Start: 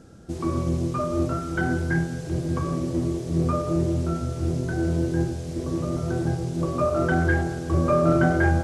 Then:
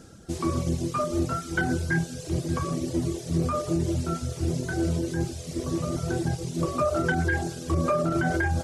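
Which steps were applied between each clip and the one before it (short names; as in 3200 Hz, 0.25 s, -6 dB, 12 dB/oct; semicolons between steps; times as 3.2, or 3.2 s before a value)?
limiter -15 dBFS, peak gain reduction 8 dB; high shelf 2100 Hz +8.5 dB; reverb removal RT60 1 s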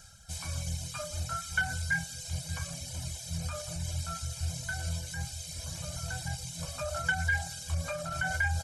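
passive tone stack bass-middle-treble 10-0-10; comb 1.3 ms, depth 93%; reverse; upward compressor, threshold -47 dBFS; reverse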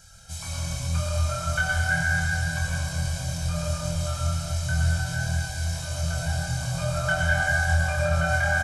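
doubler 25 ms -3.5 dB; digital reverb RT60 4.6 s, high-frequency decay 0.3×, pre-delay 60 ms, DRR -6 dB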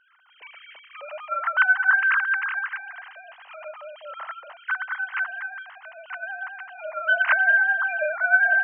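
sine-wave speech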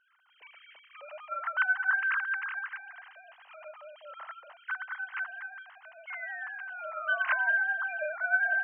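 painted sound fall, 6.07–7.5, 940–2200 Hz -33 dBFS; gain -8.5 dB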